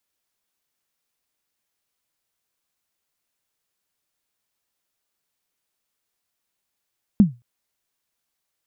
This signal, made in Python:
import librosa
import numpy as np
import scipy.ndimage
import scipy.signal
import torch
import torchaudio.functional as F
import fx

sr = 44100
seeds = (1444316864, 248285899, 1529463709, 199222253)

y = fx.drum_kick(sr, seeds[0], length_s=0.22, level_db=-5.0, start_hz=220.0, end_hz=120.0, sweep_ms=133.0, decay_s=0.24, click=False)